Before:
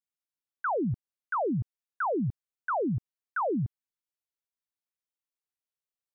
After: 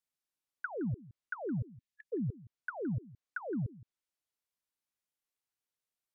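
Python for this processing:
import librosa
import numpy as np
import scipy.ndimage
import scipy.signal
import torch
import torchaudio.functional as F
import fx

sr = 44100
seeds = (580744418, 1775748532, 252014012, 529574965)

y = fx.spec_erase(x, sr, start_s=1.59, length_s=0.54, low_hz=260.0, high_hz=1700.0)
y = fx.level_steps(y, sr, step_db=20)
y = fx.env_lowpass_down(y, sr, base_hz=410.0, full_db=-39.0)
y = y + 10.0 ** (-19.5 / 20.0) * np.pad(y, (int(167 * sr / 1000.0), 0))[:len(y)]
y = y * 10.0 ** (7.0 / 20.0)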